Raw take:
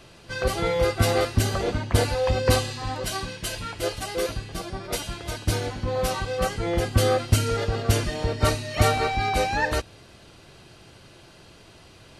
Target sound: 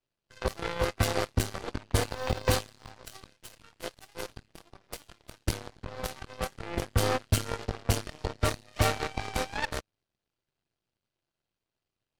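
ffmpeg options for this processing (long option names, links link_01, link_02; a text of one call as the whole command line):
ffmpeg -i in.wav -filter_complex "[0:a]aeval=exprs='0.531*(cos(1*acos(clip(val(0)/0.531,-1,1)))-cos(1*PI/2))+0.237*(cos(2*acos(clip(val(0)/0.531,-1,1)))-cos(2*PI/2))+0.075*(cos(7*acos(clip(val(0)/0.531,-1,1)))-cos(7*PI/2))':channel_layout=same,asettb=1/sr,asplit=3[link_01][link_02][link_03];[link_01]atrim=end=1.974[link_04];[link_02]atrim=start=1.97:end=2.91,asetpts=PTS-STARTPTS,afade=type=in:duration=0.004:curve=qsin,afade=type=out:start_time=0.936:duration=0.004:curve=qsin,acrusher=bits=6:mode=log:mix=0:aa=0.000001[link_05];[link_03]atrim=start=2.906[link_06];[link_04][link_05]acrossfade=duration=0.004:curve1=hsin:curve2=qsin[link_07];[link_07][link_06]acrossfade=duration=0.004:curve1=qsin:curve2=hsin,aeval=exprs='clip(val(0),-1,0.224)':channel_layout=same,volume=-2dB" out.wav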